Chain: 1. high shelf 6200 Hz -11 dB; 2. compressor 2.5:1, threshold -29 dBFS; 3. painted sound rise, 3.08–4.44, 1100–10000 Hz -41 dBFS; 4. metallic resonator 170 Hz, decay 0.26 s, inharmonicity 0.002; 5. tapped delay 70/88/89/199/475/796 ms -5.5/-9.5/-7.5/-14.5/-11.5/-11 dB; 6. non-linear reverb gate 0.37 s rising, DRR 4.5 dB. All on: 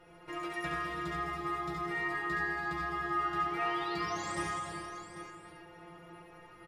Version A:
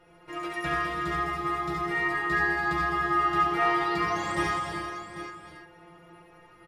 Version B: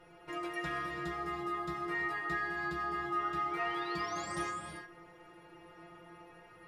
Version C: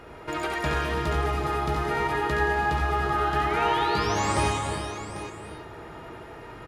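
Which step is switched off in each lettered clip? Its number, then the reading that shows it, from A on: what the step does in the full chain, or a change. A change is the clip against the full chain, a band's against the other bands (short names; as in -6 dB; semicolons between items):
2, mean gain reduction 4.5 dB; 5, echo-to-direct 1.0 dB to -4.5 dB; 4, 125 Hz band +6.0 dB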